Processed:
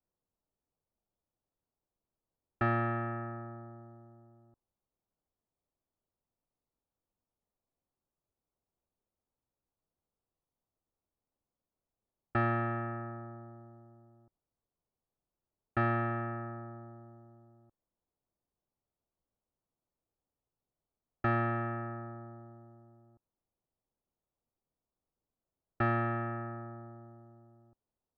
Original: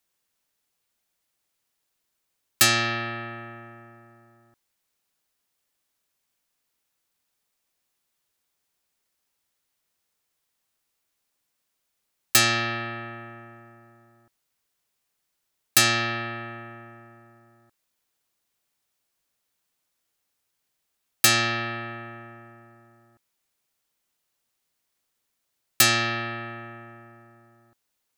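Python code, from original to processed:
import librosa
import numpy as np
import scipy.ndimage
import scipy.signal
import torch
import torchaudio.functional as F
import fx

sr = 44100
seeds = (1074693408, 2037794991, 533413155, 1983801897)

y = fx.env_lowpass(x, sr, base_hz=780.0, full_db=-21.0)
y = scipy.signal.sosfilt(scipy.signal.butter(4, 1400.0, 'lowpass', fs=sr, output='sos'), y)
y = fx.low_shelf(y, sr, hz=94.0, db=8.5)
y = y * 10.0 ** (-3.5 / 20.0)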